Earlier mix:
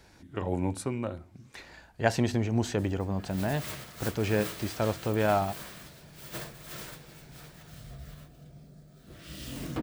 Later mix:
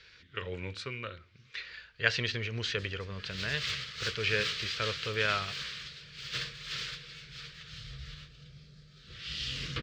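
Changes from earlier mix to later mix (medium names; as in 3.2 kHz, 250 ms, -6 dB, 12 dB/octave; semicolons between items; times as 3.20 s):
speech: add tone controls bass -8 dB, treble -8 dB; master: add FFT filter 130 Hz 0 dB, 300 Hz -16 dB, 460 Hz -2 dB, 790 Hz -23 dB, 1.2 kHz +1 dB, 3.1 kHz +12 dB, 4.7 kHz +11 dB, 7.2 kHz -3 dB, 11 kHz -25 dB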